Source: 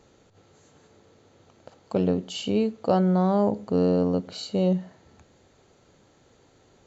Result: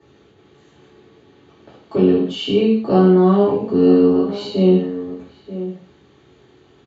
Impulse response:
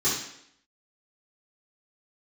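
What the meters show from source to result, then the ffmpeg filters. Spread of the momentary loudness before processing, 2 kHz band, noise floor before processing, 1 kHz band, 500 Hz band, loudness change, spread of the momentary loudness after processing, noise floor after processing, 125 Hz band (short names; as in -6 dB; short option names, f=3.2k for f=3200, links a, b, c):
8 LU, +8.5 dB, -60 dBFS, +5.0 dB, +10.0 dB, +9.0 dB, 16 LU, -53 dBFS, +6.5 dB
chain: -filter_complex "[0:a]lowpass=f=3k:t=q:w=2,asplit=2[a][b];[b]adelay=932.9,volume=-13dB,highshelf=f=4k:g=-21[c];[a][c]amix=inputs=2:normalize=0[d];[1:a]atrim=start_sample=2205,afade=t=out:st=0.26:d=0.01,atrim=end_sample=11907[e];[d][e]afir=irnorm=-1:irlink=0,volume=-7dB"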